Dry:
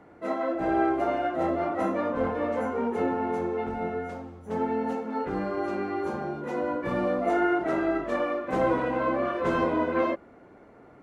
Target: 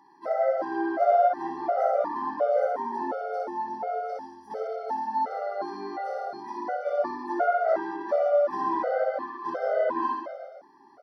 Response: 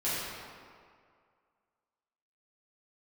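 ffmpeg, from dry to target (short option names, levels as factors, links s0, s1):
-filter_complex "[0:a]asettb=1/sr,asplit=3[s0][s1][s2];[s0]atrim=end=9.044[s3];[s1]atrim=start=9.04:end=9.69,asetpts=PTS-STARTPTS,afade=t=in:d=0.004:c=qsin,afade=t=out:st=0.646:d=0.004:c=qsin,agate=range=0.0224:threshold=0.0891:ratio=3:detection=peak[s4];[s2]atrim=start=9.686[s5];[s3][s4]acrossfade=d=0.004:c1=hsin:c2=qsin[s6];[s6][s5]acrossfade=d=0.004:c1=qsin:c2=hsin,highpass=420,aecho=1:1:60|132|218.4|322.1|446.5:0.631|0.398|0.251|0.158|0.1,acrossover=split=2800[s7][s8];[s8]acompressor=threshold=0.00112:ratio=4:attack=1:release=60[s9];[s7][s9]amix=inputs=2:normalize=0,superequalizer=8b=2.51:9b=2.24:12b=0.316:14b=3.98:15b=0.398,afftfilt=real='re*gt(sin(2*PI*1.4*pts/sr)*(1-2*mod(floor(b*sr/1024/390),2)),0)':imag='im*gt(sin(2*PI*1.4*pts/sr)*(1-2*mod(floor(b*sr/1024/390),2)),0)':win_size=1024:overlap=0.75,volume=0.841"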